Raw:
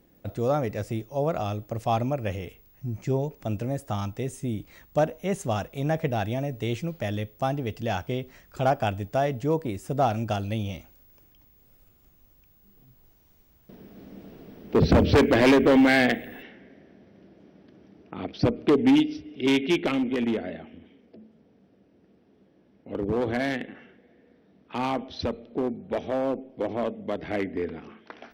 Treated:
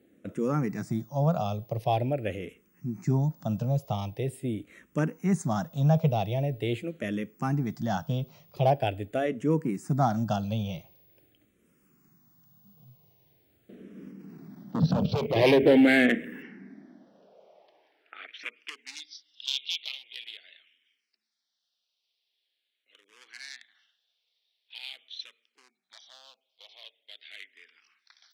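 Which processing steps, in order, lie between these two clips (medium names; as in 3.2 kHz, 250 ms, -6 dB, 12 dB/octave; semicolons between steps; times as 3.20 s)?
14.08–15.36 s: level held to a coarse grid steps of 12 dB; high-pass sweep 150 Hz -> 3.8 kHz, 16.49–18.86 s; barber-pole phaser -0.44 Hz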